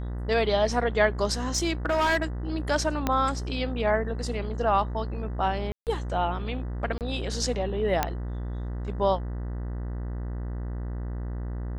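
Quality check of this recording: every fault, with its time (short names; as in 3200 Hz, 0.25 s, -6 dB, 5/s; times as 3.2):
buzz 60 Hz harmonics 33 -32 dBFS
1.49–2.24 clipped -19.5 dBFS
3.07 pop -10 dBFS
5.72–5.87 gap 0.148 s
6.98–7.01 gap 28 ms
8.03 pop -8 dBFS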